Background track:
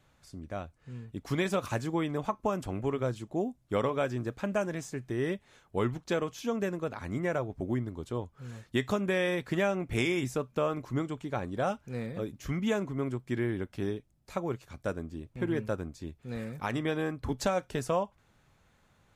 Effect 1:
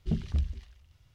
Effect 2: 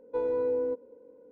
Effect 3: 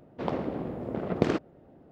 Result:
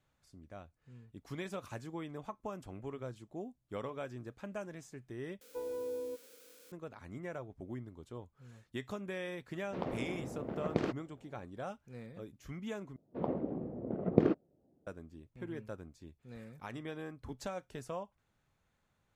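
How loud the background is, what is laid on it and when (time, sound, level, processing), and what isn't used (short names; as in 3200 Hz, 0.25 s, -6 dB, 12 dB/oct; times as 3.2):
background track -12 dB
5.41 replace with 2 -11 dB + switching spikes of -32.5 dBFS
9.54 add 3 -8 dB
12.96 replace with 3 -2.5 dB + spectral expander 1.5:1
not used: 1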